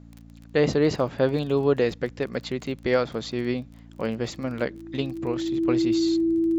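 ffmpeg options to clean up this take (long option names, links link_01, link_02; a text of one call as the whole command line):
ffmpeg -i in.wav -af "adeclick=threshold=4,bandreject=frequency=56.7:width_type=h:width=4,bandreject=frequency=113.4:width_type=h:width=4,bandreject=frequency=170.1:width_type=h:width=4,bandreject=frequency=226.8:width_type=h:width=4,bandreject=frequency=283.5:width_type=h:width=4,bandreject=frequency=330:width=30" out.wav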